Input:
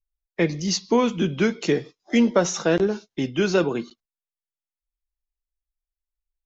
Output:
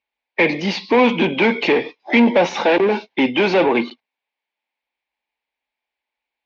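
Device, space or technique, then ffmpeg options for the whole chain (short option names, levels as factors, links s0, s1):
overdrive pedal into a guitar cabinet: -filter_complex "[0:a]asplit=2[s0][s1];[s1]highpass=f=720:p=1,volume=20,asoftclip=type=tanh:threshold=0.447[s2];[s0][s2]amix=inputs=2:normalize=0,lowpass=f=2900:p=1,volume=0.501,highpass=100,equalizer=f=140:t=q:w=4:g=-9,equalizer=f=250:t=q:w=4:g=6,equalizer=f=530:t=q:w=4:g=3,equalizer=f=860:t=q:w=4:g=9,equalizer=f=1300:t=q:w=4:g=-9,equalizer=f=2300:t=q:w=4:g=9,lowpass=f=4100:w=0.5412,lowpass=f=4100:w=1.3066,volume=0.794"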